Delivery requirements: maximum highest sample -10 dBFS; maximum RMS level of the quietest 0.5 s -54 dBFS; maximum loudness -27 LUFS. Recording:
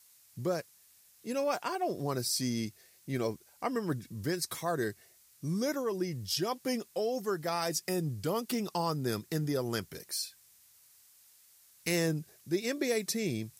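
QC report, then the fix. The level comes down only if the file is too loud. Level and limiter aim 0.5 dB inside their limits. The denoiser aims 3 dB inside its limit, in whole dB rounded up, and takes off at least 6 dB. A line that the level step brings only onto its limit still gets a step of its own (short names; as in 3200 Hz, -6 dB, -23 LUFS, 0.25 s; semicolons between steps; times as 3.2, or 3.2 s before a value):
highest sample -16.0 dBFS: OK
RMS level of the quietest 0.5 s -62 dBFS: OK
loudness -34.0 LUFS: OK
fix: none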